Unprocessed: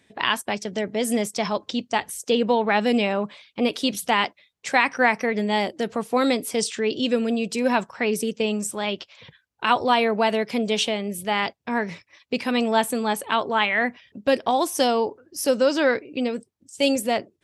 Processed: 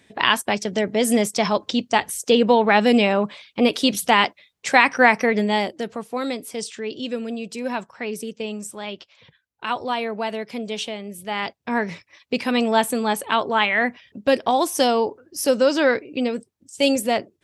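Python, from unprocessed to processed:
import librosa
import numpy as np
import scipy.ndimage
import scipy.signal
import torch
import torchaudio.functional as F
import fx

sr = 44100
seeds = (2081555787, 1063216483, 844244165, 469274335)

y = fx.gain(x, sr, db=fx.line((5.34, 4.5), (6.1, -5.5), (11.18, -5.5), (11.72, 2.0)))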